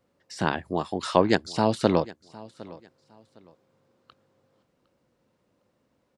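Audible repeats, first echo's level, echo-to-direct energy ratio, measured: 2, -20.5 dB, -20.0 dB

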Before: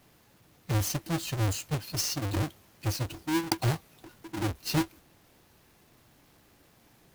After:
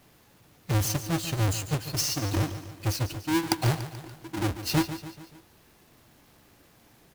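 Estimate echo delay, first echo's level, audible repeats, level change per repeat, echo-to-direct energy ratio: 144 ms, -12.0 dB, 4, -5.5 dB, -10.5 dB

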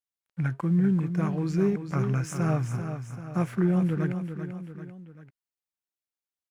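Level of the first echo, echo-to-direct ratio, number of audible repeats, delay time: -8.5 dB, -7.5 dB, 3, 390 ms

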